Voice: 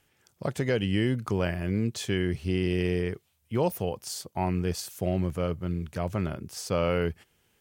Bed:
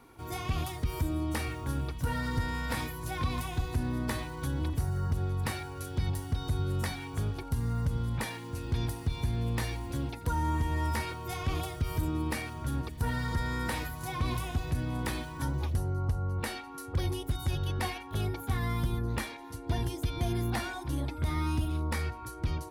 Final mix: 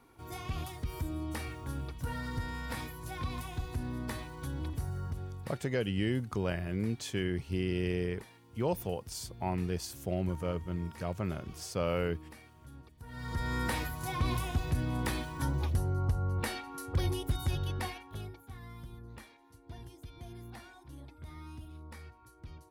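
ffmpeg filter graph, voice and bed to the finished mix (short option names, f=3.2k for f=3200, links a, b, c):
-filter_complex "[0:a]adelay=5050,volume=-5.5dB[a];[1:a]volume=13dB,afade=t=out:st=4.92:d=0.69:silence=0.223872,afade=t=in:st=13.08:d=0.49:silence=0.11885,afade=t=out:st=17.36:d=1.04:silence=0.149624[b];[a][b]amix=inputs=2:normalize=0"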